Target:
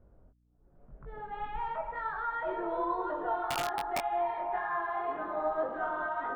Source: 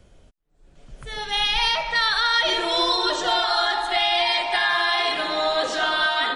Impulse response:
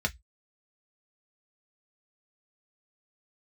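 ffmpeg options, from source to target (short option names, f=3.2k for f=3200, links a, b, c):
-filter_complex "[0:a]lowpass=f=1.3k:w=0.5412,lowpass=f=1.3k:w=1.3066,asettb=1/sr,asplit=3[a][b][c];[a]atrim=end=3.484[d];[b]atrim=start=3.48:end=4.06,asetpts=PTS-STARTPTS,afade=t=in:d=0.004:c=qsin,afade=t=out:st=0.576:d=0.004:c=qsin,aeval=exprs='(mod(6.68*val(0)+1,2)-1)/6.68':c=same[e];[c]atrim=start=4.056[f];[d][e]acrossfade=d=0.004:c1=hsin:c2=qsin[g];[g][f]acrossfade=d=0.004:c1=qsin:c2=hsin,flanger=delay=20:depth=3:speed=1.9,aeval=exprs='val(0)+0.000631*(sin(2*PI*60*n/s)+sin(2*PI*2*60*n/s)/2+sin(2*PI*3*60*n/s)/3+sin(2*PI*4*60*n/s)/4+sin(2*PI*5*60*n/s)/5)':c=same,volume=-5dB"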